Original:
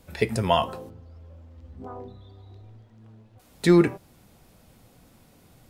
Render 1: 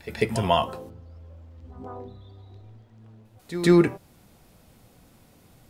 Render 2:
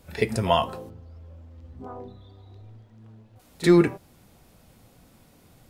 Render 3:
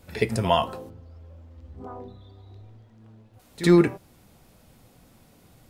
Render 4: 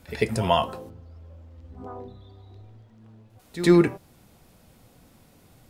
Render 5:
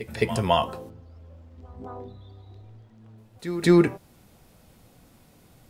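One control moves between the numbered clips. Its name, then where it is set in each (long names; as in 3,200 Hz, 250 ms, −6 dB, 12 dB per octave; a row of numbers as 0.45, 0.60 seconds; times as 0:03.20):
echo ahead of the sound, delay time: 144, 37, 58, 95, 214 milliseconds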